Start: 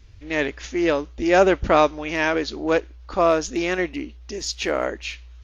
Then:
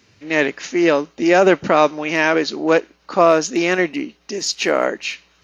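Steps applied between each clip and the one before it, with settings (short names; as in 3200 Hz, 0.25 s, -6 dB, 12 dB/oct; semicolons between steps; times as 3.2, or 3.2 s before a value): Chebyshev high-pass 160 Hz, order 3; notch 3400 Hz, Q 12; maximiser +7.5 dB; gain -1 dB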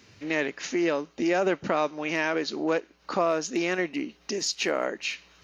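compressor 2:1, threshold -31 dBFS, peak gain reduction 12.5 dB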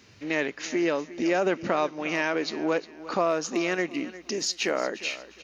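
feedback echo 0.355 s, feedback 29%, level -16 dB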